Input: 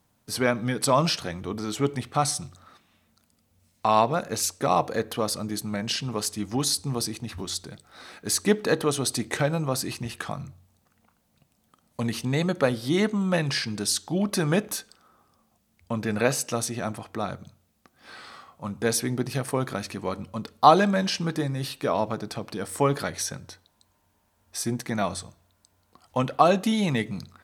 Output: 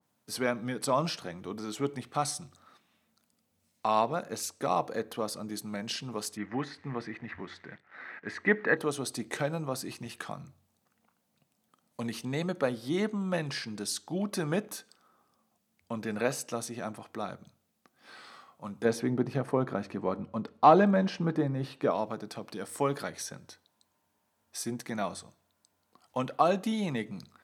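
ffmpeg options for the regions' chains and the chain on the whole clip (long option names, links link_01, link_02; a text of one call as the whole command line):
ffmpeg -i in.wav -filter_complex "[0:a]asettb=1/sr,asplit=3[link_01][link_02][link_03];[link_01]atrim=end=6.374[link_04];[link_02]atrim=start=6.37:end=8.77,asetpts=PTS-STARTPTS,afade=type=in:duration=0.004:curve=qsin,afade=type=out:start_time=2.396:duration=0.004:curve=qsin,acrusher=bits=9:dc=4:mix=0:aa=0.000001,lowpass=frequency=1900:width_type=q:width=5.4[link_05];[link_03]atrim=start=8.766[link_06];[link_04][link_05]acrossfade=duration=0.004:curve1=hsin:curve2=qsin[link_07];[link_07][link_06]acrossfade=duration=0.004:curve1=qsin:curve2=hsin,asettb=1/sr,asplit=3[link_08][link_09][link_10];[link_08]atrim=end=18.854[link_11];[link_09]atrim=start=18.85:end=21.91,asetpts=PTS-STARTPTS,afade=type=in:duration=0.004:curve=qsin,afade=type=out:start_time=3.056:duration=0.004:curve=qsin,acontrast=61,lowpass=frequency=1200:poles=1[link_12];[link_10]atrim=start=21.906[link_13];[link_11][link_12]acrossfade=duration=0.004:curve1=hsin:curve2=qsin[link_14];[link_14][link_13]acrossfade=duration=0.004:curve1=qsin:curve2=hsin,highpass=150,adynamicequalizer=threshold=0.01:dfrequency=1800:dqfactor=0.7:tfrequency=1800:tqfactor=0.7:attack=5:release=100:ratio=0.375:range=2.5:mode=cutabove:tftype=highshelf,volume=-6dB" out.wav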